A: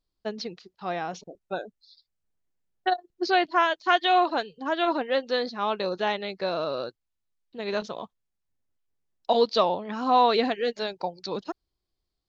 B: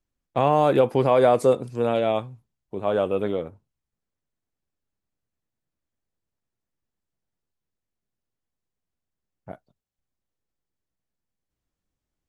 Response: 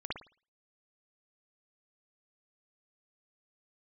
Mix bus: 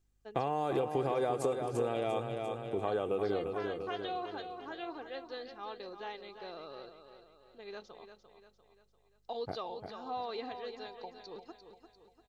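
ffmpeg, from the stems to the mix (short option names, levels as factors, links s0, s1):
-filter_complex "[0:a]aeval=exprs='val(0)+0.00126*(sin(2*PI*50*n/s)+sin(2*PI*2*50*n/s)/2+sin(2*PI*3*50*n/s)/3+sin(2*PI*4*50*n/s)/4+sin(2*PI*5*50*n/s)/5)':c=same,volume=0.133,asplit=2[s0][s1];[s1]volume=0.335[s2];[1:a]equalizer=f=7400:t=o:w=0.56:g=5,acompressor=threshold=0.0708:ratio=3,volume=1.06,asplit=2[s3][s4];[s4]volume=0.398[s5];[s2][s5]amix=inputs=2:normalize=0,aecho=0:1:346|692|1038|1384|1730|2076|2422:1|0.47|0.221|0.104|0.0488|0.0229|0.0108[s6];[s0][s3][s6]amix=inputs=3:normalize=0,aecho=1:1:2.5:0.42,acompressor=threshold=0.0178:ratio=2"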